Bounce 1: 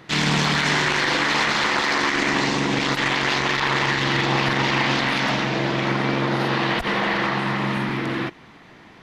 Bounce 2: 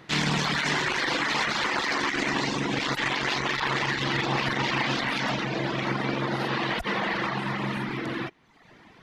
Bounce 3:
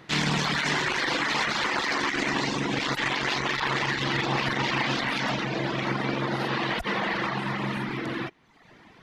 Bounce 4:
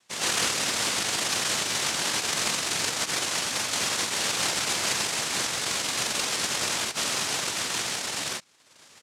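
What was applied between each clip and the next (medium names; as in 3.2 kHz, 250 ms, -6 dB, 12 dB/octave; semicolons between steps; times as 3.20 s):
reverb removal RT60 0.84 s; trim -3.5 dB
no audible change
bands offset in time highs, lows 100 ms, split 3.2 kHz; noise-vocoded speech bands 1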